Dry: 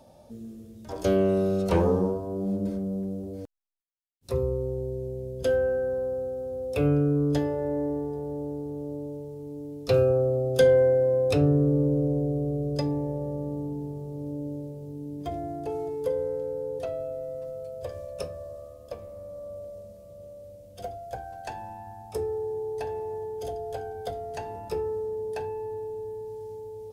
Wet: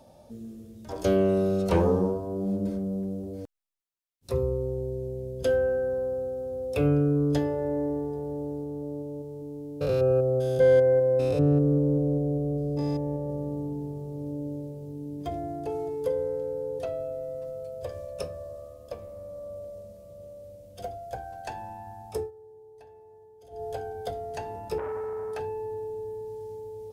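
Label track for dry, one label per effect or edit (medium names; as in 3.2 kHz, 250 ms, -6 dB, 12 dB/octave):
8.630000	13.300000	spectrogram pixelated in time every 200 ms
22.180000	23.630000	dip -18.5 dB, fades 0.13 s
24.780000	25.390000	transformer saturation saturates under 800 Hz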